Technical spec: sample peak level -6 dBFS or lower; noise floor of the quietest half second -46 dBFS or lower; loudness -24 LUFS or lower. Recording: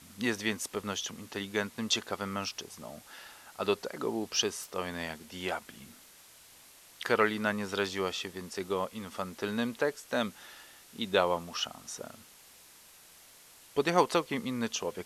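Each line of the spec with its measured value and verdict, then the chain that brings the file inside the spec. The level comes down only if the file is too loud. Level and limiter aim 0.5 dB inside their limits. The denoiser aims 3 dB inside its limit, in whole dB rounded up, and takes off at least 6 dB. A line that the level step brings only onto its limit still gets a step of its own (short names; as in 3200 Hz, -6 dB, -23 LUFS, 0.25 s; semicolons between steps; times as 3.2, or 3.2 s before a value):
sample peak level -9.5 dBFS: OK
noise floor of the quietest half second -56 dBFS: OK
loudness -33.0 LUFS: OK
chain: none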